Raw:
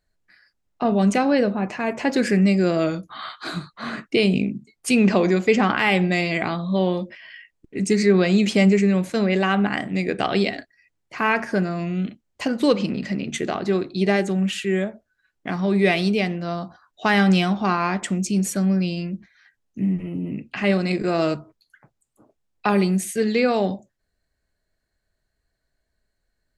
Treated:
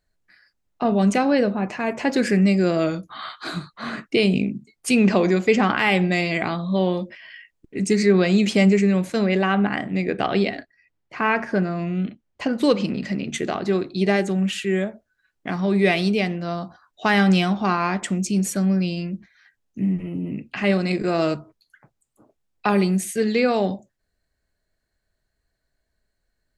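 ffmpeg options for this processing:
-filter_complex "[0:a]asettb=1/sr,asplit=3[s0][s1][s2];[s0]atrim=end=9.354[s3];[s1]atrim=start=9.35:end=12.58,asetpts=PTS-STARTPTS,afade=t=in:d=0.004:c=qsin,afade=t=out:st=3.226:d=0.004:c=qsin,aemphasis=mode=reproduction:type=50fm[s4];[s2]atrim=start=12.576[s5];[s3][s4]acrossfade=d=0.004:c1=hsin:c2=qsin[s6];[s6][s5]acrossfade=d=0.004:c1=qsin:c2=hsin"

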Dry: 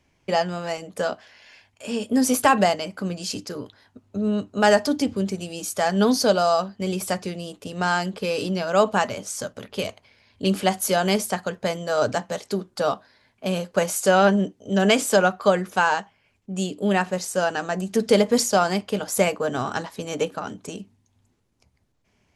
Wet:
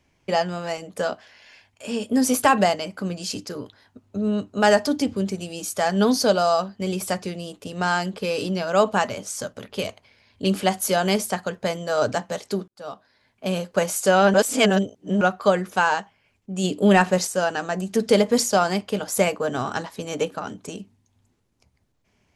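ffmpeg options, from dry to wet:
-filter_complex "[0:a]asplit=3[s0][s1][s2];[s0]afade=t=out:st=16.63:d=0.02[s3];[s1]acontrast=52,afade=t=in:st=16.63:d=0.02,afade=t=out:st=17.26:d=0.02[s4];[s2]afade=t=in:st=17.26:d=0.02[s5];[s3][s4][s5]amix=inputs=3:normalize=0,asplit=4[s6][s7][s8][s9];[s6]atrim=end=12.68,asetpts=PTS-STARTPTS,afade=t=out:st=12.676:d=0.004:c=hsin[s10];[s7]atrim=start=12.68:end=14.342,asetpts=PTS-STARTPTS,afade=t=in:d=0.8[s11];[s8]atrim=start=14.338:end=15.212,asetpts=PTS-STARTPTS,areverse[s12];[s9]atrim=start=15.208[s13];[s10][s11]concat=n=2:v=0:a=1[s14];[s14][s12]acrossfade=d=0.004:c1=hsin:c2=hsin[s15];[s15][s13]acrossfade=d=0.004:c1=hsin:c2=hsin"

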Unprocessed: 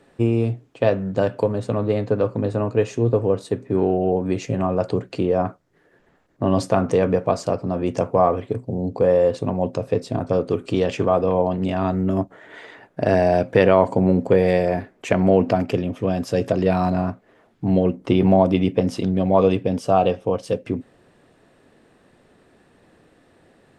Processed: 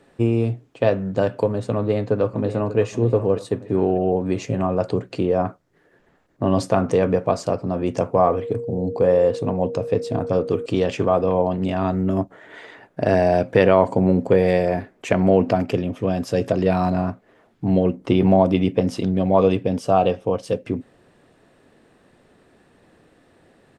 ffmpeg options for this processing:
-filter_complex "[0:a]asplit=2[s0][s1];[s1]afade=t=in:st=1.74:d=0.01,afade=t=out:st=2.79:d=0.01,aecho=0:1:590|1180|1770|2360:0.237137|0.106712|0.0480203|0.0216091[s2];[s0][s2]amix=inputs=2:normalize=0,asettb=1/sr,asplit=3[s3][s4][s5];[s3]atrim=end=8.274[s6];[s4]atrim=start=8.27:end=10.66,asetpts=PTS-STARTPTS,afade=t=in:d=0.004:c=qsin,afade=t=out:st=2.386:d=0.004:c=qsin,aeval=exprs='val(0)+0.0447*sin(2*PI*470*n/s)':c=same[s7];[s5]atrim=start=10.656[s8];[s6][s7]acrossfade=d=0.004:c1=hsin:c2=qsin[s9];[s9][s8]acrossfade=d=0.004:c1=qsin:c2=hsin"

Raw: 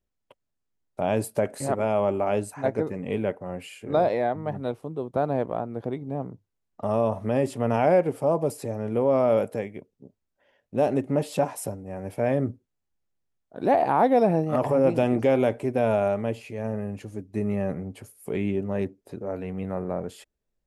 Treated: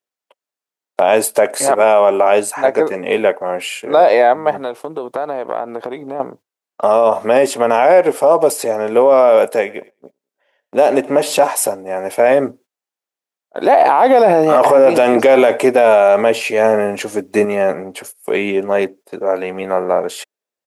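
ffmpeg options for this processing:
-filter_complex "[0:a]asettb=1/sr,asplit=3[s0][s1][s2];[s0]atrim=end=4.614[s3];[s1]atrim=start=4.61:end=6.2,asetpts=PTS-STARTPTS,afade=t=in:d=0.004:c=qsin,afade=t=out:st=1.586:d=0.004:c=qsin,acompressor=threshold=0.0316:ratio=16:attack=3.2:release=140:knee=1:detection=peak[s4];[s2]atrim=start=6.196[s5];[s3][s4]acrossfade=d=0.004:c1=hsin:c2=qsin[s6];[s6][s5]acrossfade=d=0.004:c1=qsin:c2=hsin,asplit=3[s7][s8][s9];[s7]afade=t=out:st=9.66:d=0.02[s10];[s8]aecho=1:1:107|214|321:0.075|0.0315|0.0132,afade=t=in:st=9.66:d=0.02,afade=t=out:st=11.46:d=0.02[s11];[s9]afade=t=in:st=11.46:d=0.02[s12];[s10][s11][s12]amix=inputs=3:normalize=0,asettb=1/sr,asplit=3[s13][s14][s15];[s13]atrim=end=13.804[s16];[s14]atrim=start=13.8:end=17.45,asetpts=PTS-STARTPTS,afade=t=in:d=0.004:c=qsin,afade=t=out:st=3.646:d=0.004:c=qsin,acontrast=44[s17];[s15]atrim=start=17.446[s18];[s16][s17]acrossfade=d=0.004:c1=hsin:c2=qsin[s19];[s19][s18]acrossfade=d=0.004:c1=qsin:c2=hsin,agate=range=0.178:threshold=0.00447:ratio=16:detection=peak,highpass=530,alimiter=level_in=9.44:limit=0.891:release=50:level=0:latency=1,volume=0.891"

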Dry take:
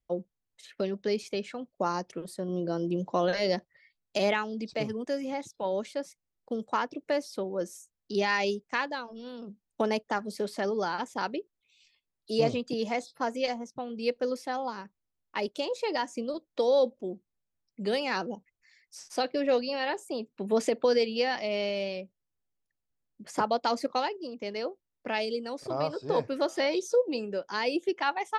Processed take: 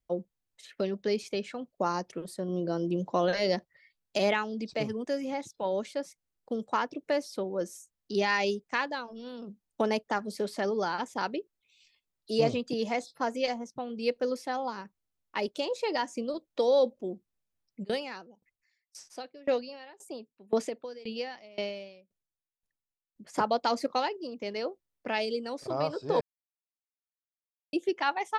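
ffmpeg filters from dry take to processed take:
-filter_complex "[0:a]asplit=3[s0][s1][s2];[s0]afade=t=out:st=17.83:d=0.02[s3];[s1]aeval=exprs='val(0)*pow(10,-25*if(lt(mod(1.9*n/s,1),2*abs(1.9)/1000),1-mod(1.9*n/s,1)/(2*abs(1.9)/1000),(mod(1.9*n/s,1)-2*abs(1.9)/1000)/(1-2*abs(1.9)/1000))/20)':c=same,afade=t=in:st=17.83:d=0.02,afade=t=out:st=23.33:d=0.02[s4];[s2]afade=t=in:st=23.33:d=0.02[s5];[s3][s4][s5]amix=inputs=3:normalize=0,asplit=3[s6][s7][s8];[s6]atrim=end=26.21,asetpts=PTS-STARTPTS,afade=t=out:st=26.206:d=0.004:c=hsin[s9];[s7]atrim=start=26.21:end=27.73,asetpts=PTS-STARTPTS,volume=0[s10];[s8]atrim=start=27.73,asetpts=PTS-STARTPTS,afade=t=in:d=0.004:c=hsin[s11];[s9][s10][s11]concat=n=3:v=0:a=1"

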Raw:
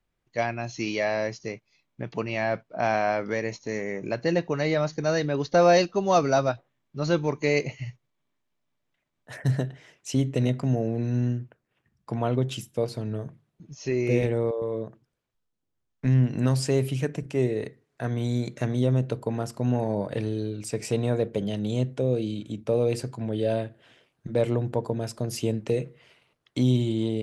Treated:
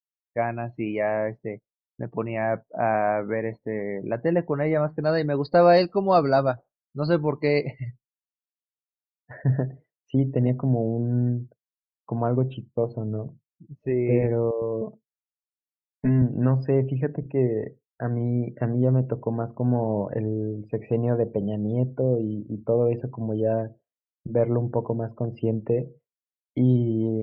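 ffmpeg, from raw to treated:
-filter_complex "[0:a]asettb=1/sr,asplit=3[s0][s1][s2];[s0]atrim=end=5.024[s3];[s1]atrim=start=5.02:end=9.33,asetpts=PTS-STARTPTS,afade=t=in:d=0.004:c=qsin,afade=t=out:st=4.306:d=0.004:c=qsin,lowpass=f=4700:t=q:w=11[s4];[s2]atrim=start=9.326[s5];[s3][s4]acrossfade=d=0.004:c1=hsin:c2=qsin[s6];[s6][s5]acrossfade=d=0.004:c1=qsin:c2=hsin,asettb=1/sr,asplit=3[s7][s8][s9];[s7]atrim=end=14.814[s10];[s8]atrim=start=14.81:end=16.22,asetpts=PTS-STARTPTS,afade=t=in:d=0.004:c=qsin,afade=t=out:st=1.406:d=0.004:c=qsin,aecho=1:1:4.7:0.88,atrim=end_sample=62181[s11];[s9]atrim=start=16.216[s12];[s10][s11]acrossfade=d=0.004:c1=hsin:c2=qsin[s13];[s13][s12]acrossfade=d=0.004:c1=qsin:c2=hsin,agate=range=0.0224:threshold=0.00631:ratio=3:detection=peak,lowpass=1600,afftdn=nr=33:nf=-46,volume=1.26"

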